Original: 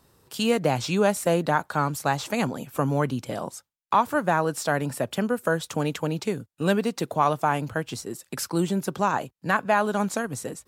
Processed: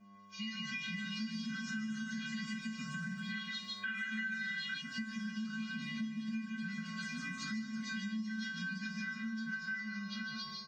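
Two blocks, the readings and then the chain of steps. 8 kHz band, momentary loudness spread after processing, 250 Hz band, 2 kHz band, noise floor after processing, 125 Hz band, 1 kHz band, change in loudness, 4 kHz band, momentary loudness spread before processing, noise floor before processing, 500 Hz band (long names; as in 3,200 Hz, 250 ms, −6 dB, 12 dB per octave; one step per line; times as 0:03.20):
−18.0 dB, 4 LU, −11.0 dB, −7.0 dB, −48 dBFS, −18.0 dB, −28.5 dB, −14.0 dB, −6.0 dB, 9 LU, −72 dBFS, below −40 dB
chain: hearing-aid frequency compression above 1,300 Hz 1.5 to 1
linear-phase brick-wall band-stop 200–1,200 Hz
surface crackle 50 per second −46 dBFS
delay with pitch and tempo change per echo 362 ms, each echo +2 semitones, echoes 3
hum with harmonics 100 Hz, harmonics 24, −44 dBFS −6 dB per octave
single-tap delay 152 ms −4.5 dB
flanger 0.25 Hz, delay 9.7 ms, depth 3.8 ms, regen +57%
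tuned comb filter 220 Hz, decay 0.32 s, harmonics odd, mix 100%
gain on a spectral selection 0:03.30–0:04.81, 1,300–4,200 Hz +11 dB
automatic gain control gain up to 9.5 dB
comb filter 4.5 ms, depth 90%
downward compressor 6 to 1, threshold −41 dBFS, peak gain reduction 19.5 dB
level +3 dB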